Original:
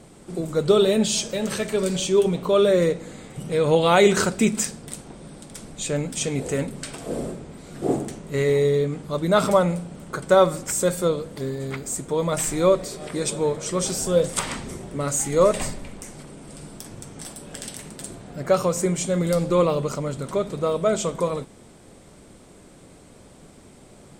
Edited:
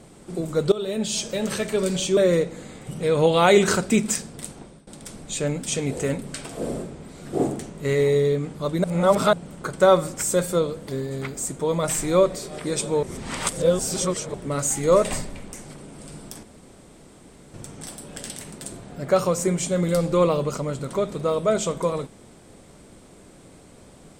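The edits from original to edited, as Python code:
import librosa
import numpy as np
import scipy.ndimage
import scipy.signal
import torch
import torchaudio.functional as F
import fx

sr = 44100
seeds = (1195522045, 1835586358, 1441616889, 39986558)

y = fx.edit(x, sr, fx.fade_in_from(start_s=0.72, length_s=0.63, floor_db=-17.0),
    fx.cut(start_s=2.17, length_s=0.49),
    fx.fade_out_to(start_s=5.08, length_s=0.28, floor_db=-21.0),
    fx.reverse_span(start_s=9.33, length_s=0.49),
    fx.reverse_span(start_s=13.52, length_s=1.31),
    fx.insert_room_tone(at_s=16.92, length_s=1.11), tone=tone)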